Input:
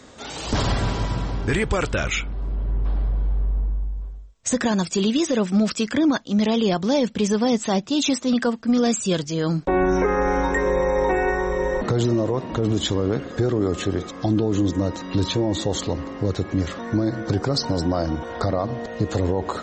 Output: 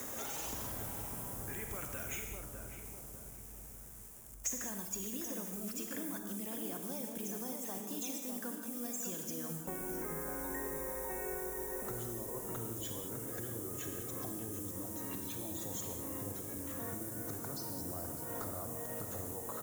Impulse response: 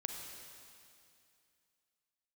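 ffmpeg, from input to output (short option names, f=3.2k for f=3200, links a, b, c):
-filter_complex "[0:a]aresample=16000,aresample=44100,acrossover=split=320|610|2300[a][b][c][d];[b]alimiter=level_in=4.5dB:limit=-24dB:level=0:latency=1,volume=-4.5dB[e];[a][e][c][d]amix=inputs=4:normalize=0,acompressor=threshold=-45dB:ratio=8,bass=f=250:g=-4,treble=f=4k:g=-11,acrusher=bits=10:mix=0:aa=0.000001,asplit=2[f][g];[g]adelay=603,lowpass=f=1k:p=1,volume=-4dB,asplit=2[h][i];[i]adelay=603,lowpass=f=1k:p=1,volume=0.49,asplit=2[j][k];[k]adelay=603,lowpass=f=1k:p=1,volume=0.49,asplit=2[l][m];[m]adelay=603,lowpass=f=1k:p=1,volume=0.49,asplit=2[n][o];[o]adelay=603,lowpass=f=1k:p=1,volume=0.49,asplit=2[p][q];[q]adelay=603,lowpass=f=1k:p=1,volume=0.49[r];[f][h][j][l][n][p][r]amix=inputs=7:normalize=0[s];[1:a]atrim=start_sample=2205,afade=t=out:st=0.27:d=0.01,atrim=end_sample=12348[t];[s][t]afir=irnorm=-1:irlink=0,aexciter=amount=10.4:drive=7.1:freq=6.3k,volume=4dB"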